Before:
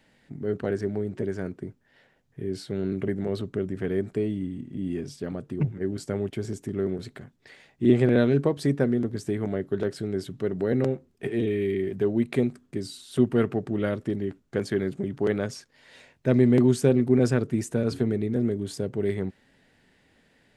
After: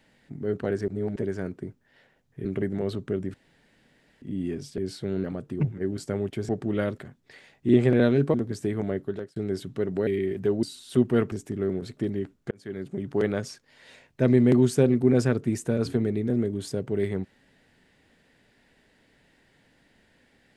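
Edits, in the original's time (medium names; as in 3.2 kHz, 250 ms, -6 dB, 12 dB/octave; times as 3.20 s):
0.88–1.16 s: reverse
2.45–2.91 s: move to 5.24 s
3.80–4.68 s: room tone
6.49–7.14 s: swap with 13.54–14.03 s
8.50–8.98 s: delete
9.62–10.00 s: fade out
10.71–11.63 s: delete
12.19–12.85 s: delete
14.57–15.18 s: fade in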